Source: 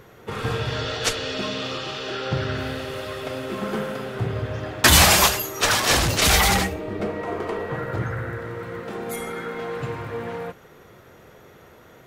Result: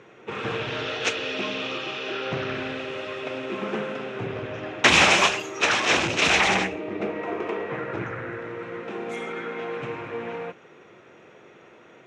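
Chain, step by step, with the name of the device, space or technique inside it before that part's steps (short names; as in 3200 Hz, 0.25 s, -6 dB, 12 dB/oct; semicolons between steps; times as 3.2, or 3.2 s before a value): full-range speaker at full volume (Doppler distortion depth 0.76 ms; speaker cabinet 180–6300 Hz, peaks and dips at 340 Hz +4 dB, 2500 Hz +8 dB, 4600 Hz -9 dB); gain -2 dB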